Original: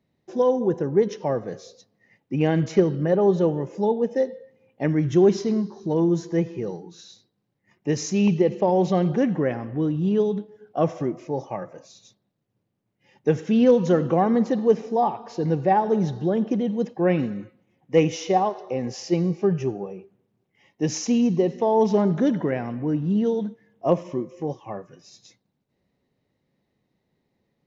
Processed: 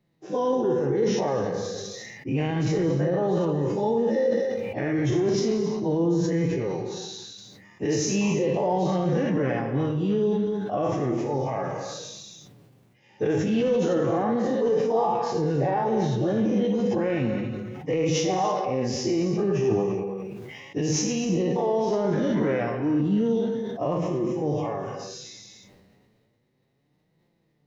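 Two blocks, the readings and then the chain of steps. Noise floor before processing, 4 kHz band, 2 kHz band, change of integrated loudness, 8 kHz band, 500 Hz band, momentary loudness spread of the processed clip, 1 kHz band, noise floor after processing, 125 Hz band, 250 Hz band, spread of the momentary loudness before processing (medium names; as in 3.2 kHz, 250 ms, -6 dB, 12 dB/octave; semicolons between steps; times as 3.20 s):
-76 dBFS, +3.5 dB, +1.0 dB, -2.0 dB, no reading, -1.5 dB, 10 LU, -2.0 dB, -68 dBFS, -1.0 dB, -2.0 dB, 12 LU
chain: every event in the spectrogram widened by 120 ms; flange 0.33 Hz, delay 5.7 ms, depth 4.6 ms, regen +30%; peak limiter -17.5 dBFS, peak gain reduction 11.5 dB; gated-style reverb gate 320 ms flat, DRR 7 dB; decay stretcher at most 25 dB/s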